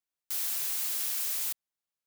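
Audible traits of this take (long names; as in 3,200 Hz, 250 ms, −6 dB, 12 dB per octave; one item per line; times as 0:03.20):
background noise floor −92 dBFS
spectral slope +3.0 dB per octave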